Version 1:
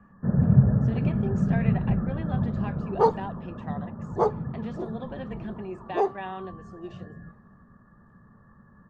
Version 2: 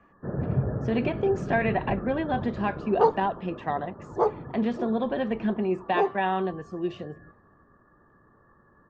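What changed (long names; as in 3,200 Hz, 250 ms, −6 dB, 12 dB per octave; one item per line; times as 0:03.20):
speech +10.5 dB
first sound: add low shelf with overshoot 260 Hz −6.5 dB, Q 3
master: add high-frequency loss of the air 87 metres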